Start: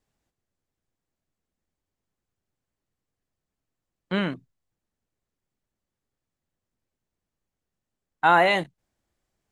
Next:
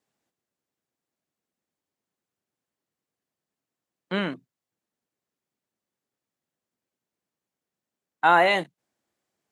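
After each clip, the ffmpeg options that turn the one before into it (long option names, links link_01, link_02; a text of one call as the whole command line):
ffmpeg -i in.wav -af "highpass=190" out.wav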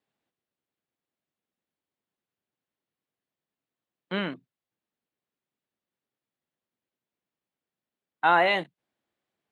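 ffmpeg -i in.wav -af "highshelf=frequency=4600:width_type=q:width=1.5:gain=-7,volume=-3dB" out.wav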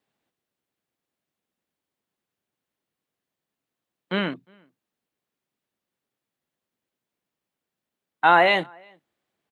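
ffmpeg -i in.wav -filter_complex "[0:a]asplit=2[link_01][link_02];[link_02]adelay=355.7,volume=-30dB,highshelf=frequency=4000:gain=-8[link_03];[link_01][link_03]amix=inputs=2:normalize=0,volume=4.5dB" out.wav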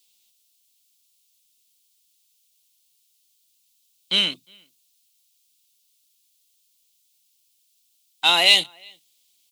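ffmpeg -i in.wav -af "aexciter=amount=12.8:drive=9.6:freq=2700,volume=-8dB" out.wav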